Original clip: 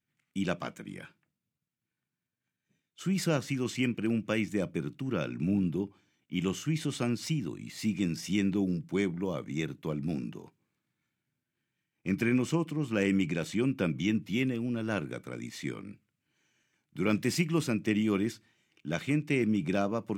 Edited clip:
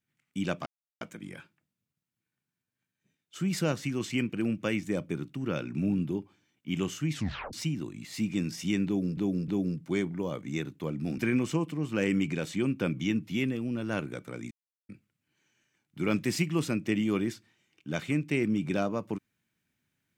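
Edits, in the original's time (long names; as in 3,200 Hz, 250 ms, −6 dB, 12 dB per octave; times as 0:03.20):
0:00.66: splice in silence 0.35 s
0:06.77: tape stop 0.41 s
0:08.51–0:08.82: repeat, 3 plays
0:10.21–0:12.17: remove
0:15.50–0:15.88: silence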